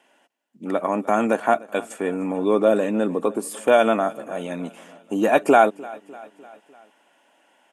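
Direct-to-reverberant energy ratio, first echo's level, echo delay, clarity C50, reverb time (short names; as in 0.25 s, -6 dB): none, -21.5 dB, 0.3 s, none, none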